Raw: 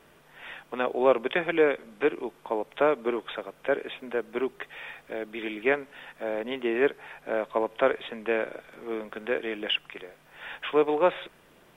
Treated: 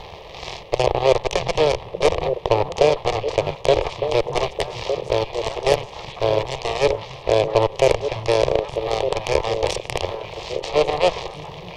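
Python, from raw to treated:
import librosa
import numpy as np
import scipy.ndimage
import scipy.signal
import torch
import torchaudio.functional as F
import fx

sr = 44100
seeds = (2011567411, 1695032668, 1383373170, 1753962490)

p1 = fx.bin_compress(x, sr, power=0.4)
p2 = fx.high_shelf(p1, sr, hz=2400.0, db=-6.5)
p3 = fx.rider(p2, sr, range_db=5, speed_s=0.5)
p4 = p2 + (p3 * librosa.db_to_amplitude(-0.5))
p5 = fx.cheby_harmonics(p4, sr, harmonics=(6, 7), levels_db=(-18, -15), full_scale_db=0.0)
p6 = fx.fixed_phaser(p5, sr, hz=610.0, stages=4)
y = fx.echo_stepped(p6, sr, ms=604, hz=160.0, octaves=1.4, feedback_pct=70, wet_db=-3)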